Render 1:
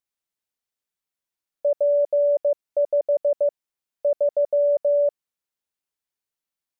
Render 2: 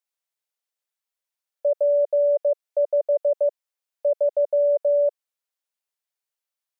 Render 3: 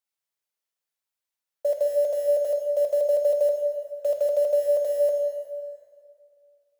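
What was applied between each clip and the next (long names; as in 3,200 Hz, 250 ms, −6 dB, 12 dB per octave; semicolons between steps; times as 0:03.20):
Chebyshev high-pass filter 500 Hz, order 3
one scale factor per block 5 bits; dense smooth reverb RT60 2.2 s, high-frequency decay 0.75×, DRR 2.5 dB; level −2 dB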